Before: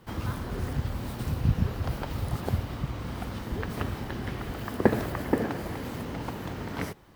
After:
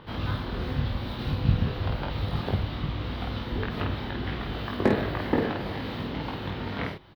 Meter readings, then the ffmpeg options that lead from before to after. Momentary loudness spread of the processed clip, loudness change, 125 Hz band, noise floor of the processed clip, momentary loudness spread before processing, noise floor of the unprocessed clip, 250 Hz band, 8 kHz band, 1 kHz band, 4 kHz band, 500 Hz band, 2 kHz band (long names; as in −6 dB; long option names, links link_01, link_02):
7 LU, +2.0 dB, +1.5 dB, −36 dBFS, 9 LU, −39 dBFS, +1.5 dB, below −10 dB, +2.0 dB, +7.0 dB, +1.5 dB, +3.0 dB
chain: -filter_complex "[0:a]highshelf=frequency=5400:width_type=q:width=3:gain=-13,acrossover=split=3000[link_01][link_02];[link_01]acompressor=mode=upward:threshold=-44dB:ratio=2.5[link_03];[link_02]alimiter=level_in=13dB:limit=-24dB:level=0:latency=1:release=190,volume=-13dB[link_04];[link_03][link_04]amix=inputs=2:normalize=0,volume=11.5dB,asoftclip=hard,volume=-11.5dB,aecho=1:1:20|50:0.668|0.708,volume=-1dB"